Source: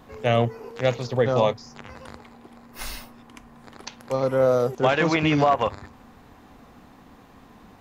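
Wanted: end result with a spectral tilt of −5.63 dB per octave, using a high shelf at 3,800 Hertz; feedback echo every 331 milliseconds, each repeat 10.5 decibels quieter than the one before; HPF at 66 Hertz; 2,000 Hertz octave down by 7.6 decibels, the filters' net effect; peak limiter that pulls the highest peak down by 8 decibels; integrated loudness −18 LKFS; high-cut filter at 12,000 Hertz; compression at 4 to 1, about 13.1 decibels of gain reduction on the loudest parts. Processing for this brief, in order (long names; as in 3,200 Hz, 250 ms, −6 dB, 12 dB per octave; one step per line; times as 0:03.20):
high-pass filter 66 Hz
low-pass filter 12,000 Hz
parametric band 2,000 Hz −8.5 dB
high-shelf EQ 3,800 Hz −5 dB
downward compressor 4 to 1, threshold −32 dBFS
brickwall limiter −28 dBFS
repeating echo 331 ms, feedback 30%, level −10.5 dB
level +22 dB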